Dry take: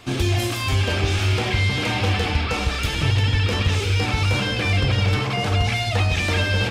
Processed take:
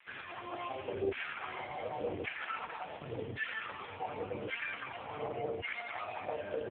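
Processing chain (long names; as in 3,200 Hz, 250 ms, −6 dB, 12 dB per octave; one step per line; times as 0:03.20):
mains-hum notches 50/100/150/200/250/300/350 Hz
tuned comb filter 72 Hz, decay 0.3 s, harmonics odd, mix 40%
single-tap delay 205 ms −4 dB
brickwall limiter −18 dBFS, peak gain reduction 6.5 dB
phase shifter 1.9 Hz, delay 1.8 ms, feedback 31%
0:02.09–0:03.07: notch filter 1,200 Hz, Q 13
auto-filter band-pass saw down 0.89 Hz 360–2,000 Hz
0:00.59–0:01.10: dynamic equaliser 2,800 Hz, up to +4 dB, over −56 dBFS, Q 1.1
slap from a distant wall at 120 metres, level −27 dB
level +1.5 dB
AMR narrowband 4.75 kbit/s 8,000 Hz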